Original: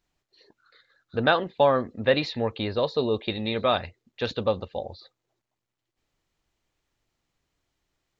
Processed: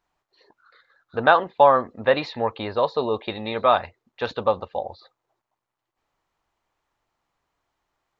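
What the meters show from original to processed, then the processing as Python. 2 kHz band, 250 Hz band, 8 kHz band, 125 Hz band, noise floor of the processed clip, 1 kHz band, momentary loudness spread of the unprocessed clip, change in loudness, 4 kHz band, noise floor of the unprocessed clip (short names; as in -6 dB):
+3.5 dB, -2.0 dB, n/a, -4.0 dB, -84 dBFS, +8.0 dB, 12 LU, +4.0 dB, -2.5 dB, -84 dBFS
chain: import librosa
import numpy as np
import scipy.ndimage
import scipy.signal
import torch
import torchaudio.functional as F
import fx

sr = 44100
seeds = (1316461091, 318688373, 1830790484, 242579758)

y = fx.peak_eq(x, sr, hz=970.0, db=14.0, octaves=1.8)
y = y * 10.0 ** (-4.5 / 20.0)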